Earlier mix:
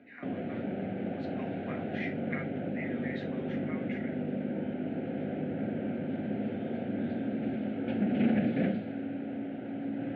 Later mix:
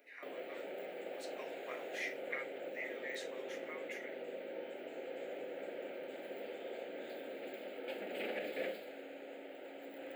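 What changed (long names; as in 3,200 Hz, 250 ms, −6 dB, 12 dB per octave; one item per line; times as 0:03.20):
background: add high-pass filter 470 Hz 24 dB per octave
master: remove loudspeaker in its box 210–3,700 Hz, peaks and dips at 230 Hz +7 dB, 720 Hz +9 dB, 1,500 Hz +8 dB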